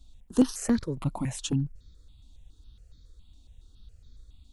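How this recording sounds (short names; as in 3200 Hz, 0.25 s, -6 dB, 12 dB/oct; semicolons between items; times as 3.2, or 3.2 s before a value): notches that jump at a steady rate 7.2 Hz 450–2800 Hz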